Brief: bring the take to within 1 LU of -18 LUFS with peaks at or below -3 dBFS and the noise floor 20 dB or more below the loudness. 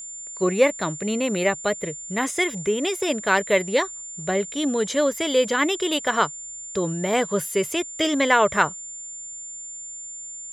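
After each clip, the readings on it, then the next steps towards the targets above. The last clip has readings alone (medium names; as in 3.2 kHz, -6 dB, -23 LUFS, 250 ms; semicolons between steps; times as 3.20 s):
tick rate 32 per s; steady tone 7.2 kHz; tone level -34 dBFS; loudness -23.0 LUFS; peak level -4.0 dBFS; loudness target -18.0 LUFS
-> de-click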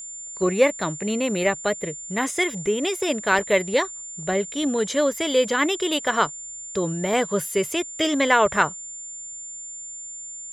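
tick rate 0.95 per s; steady tone 7.2 kHz; tone level -34 dBFS
-> band-stop 7.2 kHz, Q 30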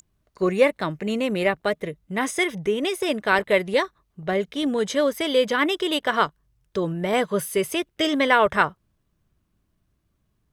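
steady tone not found; loudness -23.0 LUFS; peak level -4.0 dBFS; loudness target -18.0 LUFS
-> trim +5 dB; peak limiter -3 dBFS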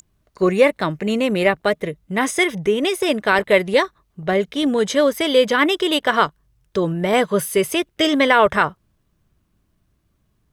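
loudness -18.5 LUFS; peak level -3.0 dBFS; noise floor -67 dBFS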